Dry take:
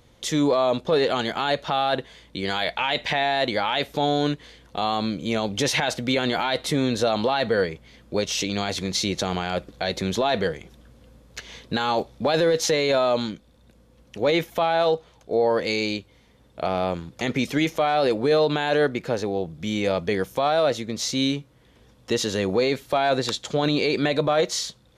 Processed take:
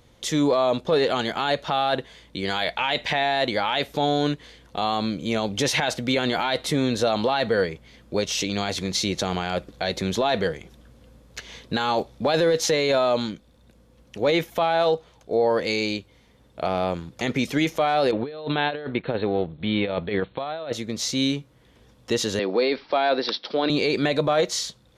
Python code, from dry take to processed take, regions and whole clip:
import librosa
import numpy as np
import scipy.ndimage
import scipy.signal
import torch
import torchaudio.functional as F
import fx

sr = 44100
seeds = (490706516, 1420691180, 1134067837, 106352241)

y = fx.chain(x, sr, fx.law_mismatch(coded='A'),
    fx.brickwall_lowpass(high_hz=4300.0),
    fx.over_compress(threshold_db=-25.0, ratio=-0.5), at=(18.11, 20.73))
y = fx.chain(y, sr, fx.highpass(hz=230.0, slope=24),
    fx.resample_bad(factor=4, down='none', up='filtered'), at=(22.39, 23.7))